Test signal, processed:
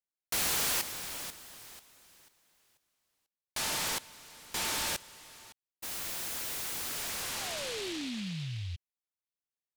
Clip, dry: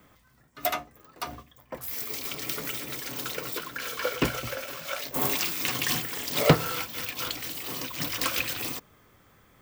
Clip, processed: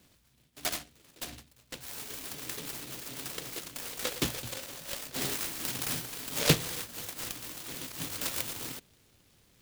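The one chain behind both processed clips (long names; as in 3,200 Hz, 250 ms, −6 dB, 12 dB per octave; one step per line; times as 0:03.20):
short delay modulated by noise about 3,100 Hz, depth 0.32 ms
level −5 dB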